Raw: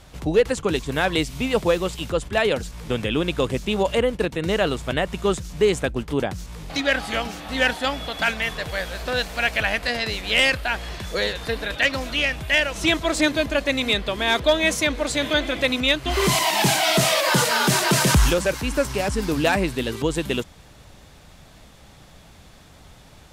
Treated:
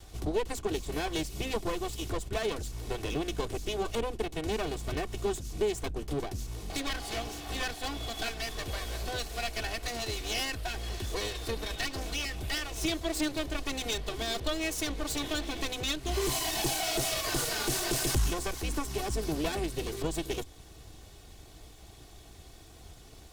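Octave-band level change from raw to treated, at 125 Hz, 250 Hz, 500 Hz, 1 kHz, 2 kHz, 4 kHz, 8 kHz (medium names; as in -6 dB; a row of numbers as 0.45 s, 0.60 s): -9.5 dB, -10.5 dB, -12.0 dB, -11.5 dB, -15.0 dB, -10.5 dB, -7.0 dB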